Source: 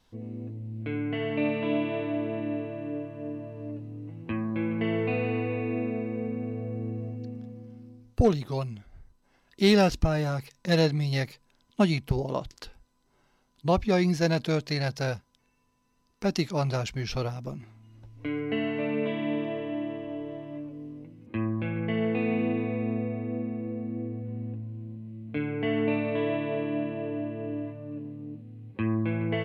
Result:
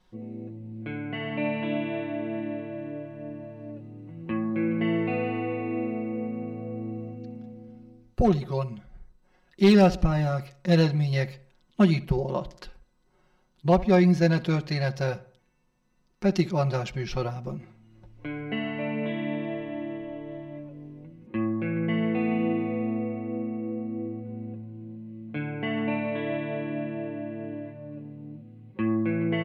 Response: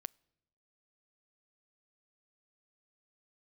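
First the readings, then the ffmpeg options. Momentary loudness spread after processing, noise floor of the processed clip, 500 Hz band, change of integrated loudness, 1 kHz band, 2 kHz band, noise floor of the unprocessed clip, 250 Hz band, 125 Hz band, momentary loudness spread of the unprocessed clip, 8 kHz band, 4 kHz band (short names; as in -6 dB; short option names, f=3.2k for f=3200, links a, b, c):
19 LU, -66 dBFS, +0.5 dB, +2.0 dB, +2.0 dB, +0.5 dB, -69 dBFS, +2.5 dB, +2.0 dB, 15 LU, n/a, -2.5 dB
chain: -filter_complex "[0:a]highshelf=f=3.9k:g=-9,aecho=1:1:5.5:0.76,volume=11dB,asoftclip=hard,volume=-11dB,asplit=2[a][b];[b]adelay=66,lowpass=f=2.6k:p=1,volume=-18dB,asplit=2[c][d];[d]adelay=66,lowpass=f=2.6k:p=1,volume=0.47,asplit=2[e][f];[f]adelay=66,lowpass=f=2.6k:p=1,volume=0.47,asplit=2[g][h];[h]adelay=66,lowpass=f=2.6k:p=1,volume=0.47[i];[c][e][g][i]amix=inputs=4:normalize=0[j];[a][j]amix=inputs=2:normalize=0"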